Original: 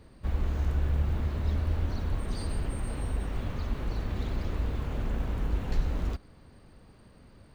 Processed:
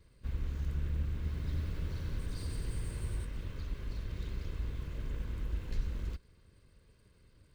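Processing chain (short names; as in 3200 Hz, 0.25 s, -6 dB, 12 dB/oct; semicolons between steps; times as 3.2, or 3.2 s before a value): minimum comb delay 1.9 ms; bell 740 Hz -12 dB 1.3 oct; 1.15–3.25 lo-fi delay 92 ms, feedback 80%, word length 10-bit, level -5 dB; gain -6 dB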